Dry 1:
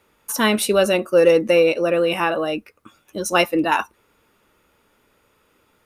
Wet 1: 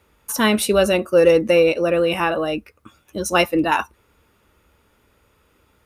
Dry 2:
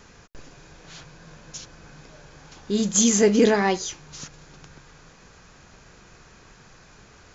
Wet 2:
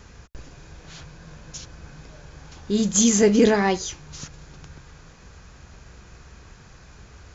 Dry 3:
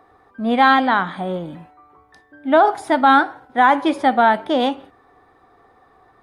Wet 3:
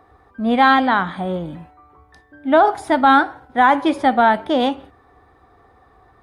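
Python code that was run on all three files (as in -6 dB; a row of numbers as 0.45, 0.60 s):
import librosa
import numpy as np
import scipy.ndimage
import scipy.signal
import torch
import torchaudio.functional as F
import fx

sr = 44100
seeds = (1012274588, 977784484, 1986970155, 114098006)

y = fx.peak_eq(x, sr, hz=62.0, db=12.5, octaves=1.6)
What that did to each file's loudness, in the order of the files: +0.5, +1.0, 0.0 LU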